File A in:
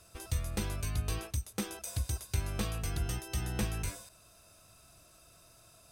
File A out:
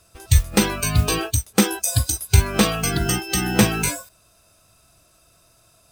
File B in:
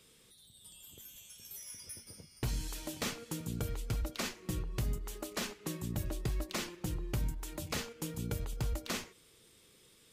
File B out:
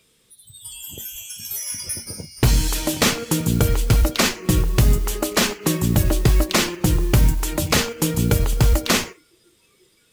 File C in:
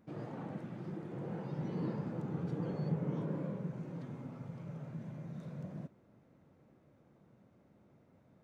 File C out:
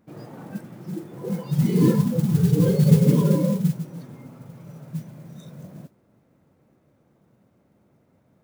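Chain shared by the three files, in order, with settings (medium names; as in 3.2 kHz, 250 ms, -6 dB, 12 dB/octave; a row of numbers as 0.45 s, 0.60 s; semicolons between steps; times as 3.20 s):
spectral noise reduction 17 dB; modulation noise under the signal 23 dB; normalise loudness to -20 LUFS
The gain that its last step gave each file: +19.5 dB, +19.0 dB, +20.5 dB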